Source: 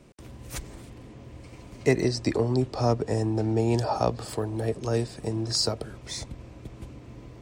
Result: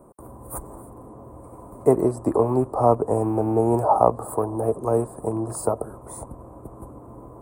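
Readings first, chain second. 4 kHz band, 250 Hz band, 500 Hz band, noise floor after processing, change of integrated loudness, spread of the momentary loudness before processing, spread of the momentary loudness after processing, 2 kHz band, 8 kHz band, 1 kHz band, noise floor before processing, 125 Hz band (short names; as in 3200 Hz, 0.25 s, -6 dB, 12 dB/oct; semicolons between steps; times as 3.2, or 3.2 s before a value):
under -25 dB, +3.5 dB, +6.5 dB, -44 dBFS, +5.0 dB, 21 LU, 21 LU, under -10 dB, -1.0 dB, +10.0 dB, -47 dBFS, -1.0 dB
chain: rattling part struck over -27 dBFS, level -28 dBFS; EQ curve 140 Hz 0 dB, 1100 Hz +13 dB, 1900 Hz -16 dB, 2800 Hz -26 dB, 5600 Hz -25 dB, 9300 Hz +10 dB; gain -1 dB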